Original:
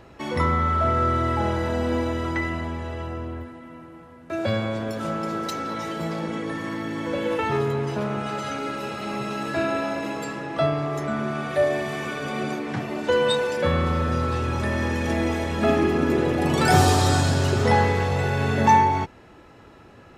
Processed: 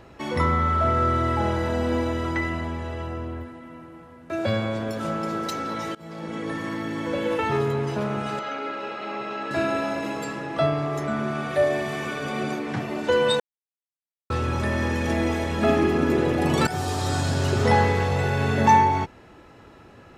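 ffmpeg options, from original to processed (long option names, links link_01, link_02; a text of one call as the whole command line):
ffmpeg -i in.wav -filter_complex "[0:a]asettb=1/sr,asplit=3[link_01][link_02][link_03];[link_01]atrim=end=8.394[link_04];[link_02]atrim=start=8.39:end=9.51,asetpts=PTS-STARTPTS,afade=type=in:duration=0.004:curve=qsin,afade=type=out:start_time=1.116:duration=0.004:curve=qsin,highpass=340,lowpass=3300[link_05];[link_03]atrim=start=9.506[link_06];[link_04][link_05]acrossfade=duration=0.004:curve1=hsin:curve2=qsin[link_07];[link_07][link_06]acrossfade=duration=0.004:curve1=qsin:curve2=hsin,asplit=5[link_08][link_09][link_10][link_11][link_12];[link_08]atrim=end=5.95,asetpts=PTS-STARTPTS,afade=type=out:start_time=5.946:duration=0.004:curve=hsin:silence=0.0630957[link_13];[link_09]atrim=start=5.95:end=13.4,asetpts=PTS-STARTPTS,afade=type=in:duration=0.55:silence=0.0630957,afade=type=out:start_time=7.446:duration=0.004:curve=hsin[link_14];[link_10]atrim=start=13.4:end=14.3,asetpts=PTS-STARTPTS,volume=0[link_15];[link_11]atrim=start=14.3:end=16.67,asetpts=PTS-STARTPTS,afade=type=in:duration=0.004:curve=hsin,afade=type=out:start_time=2.366:duration=0.004:curve=hsin:silence=0.16788[link_16];[link_12]atrim=start=16.67,asetpts=PTS-STARTPTS,afade=type=in:duration=0.98:silence=0.16788[link_17];[link_13][link_14][link_15][link_16][link_17]concat=n=5:v=0:a=1" out.wav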